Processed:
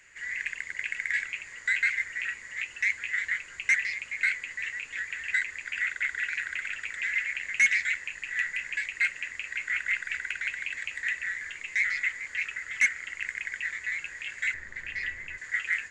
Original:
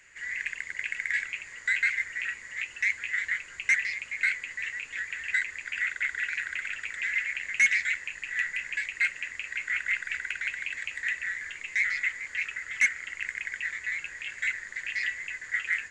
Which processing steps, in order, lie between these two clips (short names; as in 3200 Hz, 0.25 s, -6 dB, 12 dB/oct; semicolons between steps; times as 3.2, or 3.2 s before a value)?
14.54–15.38 tilt -3 dB/oct